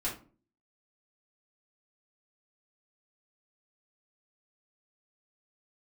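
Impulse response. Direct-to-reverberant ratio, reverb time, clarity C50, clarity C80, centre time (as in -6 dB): -7.5 dB, 0.40 s, 8.0 dB, 15.0 dB, 24 ms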